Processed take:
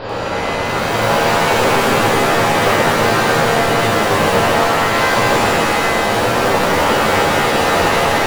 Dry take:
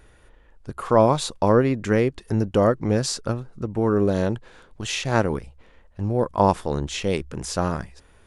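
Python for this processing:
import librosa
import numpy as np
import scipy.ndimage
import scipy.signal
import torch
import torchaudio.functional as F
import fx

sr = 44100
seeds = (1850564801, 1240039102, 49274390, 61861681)

p1 = fx.bin_compress(x, sr, power=0.2)
p2 = scipy.signal.sosfilt(scipy.signal.ellip(4, 1.0, 40, 4700.0, 'lowpass', fs=sr, output='sos'), p1)
p3 = fx.hum_notches(p2, sr, base_hz=50, count=7)
p4 = (np.mod(10.0 ** (9.5 / 20.0) * p3 + 1.0, 2.0) - 1.0) / 10.0 ** (9.5 / 20.0)
p5 = p3 + (p4 * librosa.db_to_amplitude(-6.0))
p6 = fx.rev_shimmer(p5, sr, seeds[0], rt60_s=3.0, semitones=7, shimmer_db=-2, drr_db=-10.0)
y = p6 * librosa.db_to_amplitude(-14.5)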